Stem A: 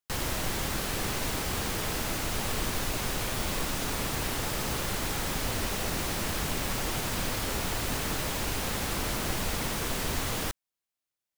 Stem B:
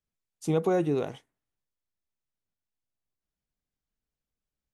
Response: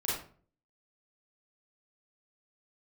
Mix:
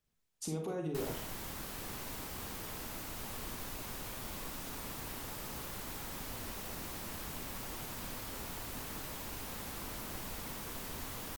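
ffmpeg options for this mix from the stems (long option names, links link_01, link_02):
-filter_complex "[0:a]equalizer=frequency=250:width_type=o:width=0.67:gain=3,equalizer=frequency=1000:width_type=o:width=0.67:gain=3,equalizer=frequency=16000:width_type=o:width=0.67:gain=9,adelay=850,volume=-14dB[link_01];[1:a]alimiter=level_in=2dB:limit=-24dB:level=0:latency=1,volume=-2dB,acompressor=threshold=-47dB:ratio=3,volume=2.5dB,asplit=2[link_02][link_03];[link_03]volume=-5dB[link_04];[2:a]atrim=start_sample=2205[link_05];[link_04][link_05]afir=irnorm=-1:irlink=0[link_06];[link_01][link_02][link_06]amix=inputs=3:normalize=0"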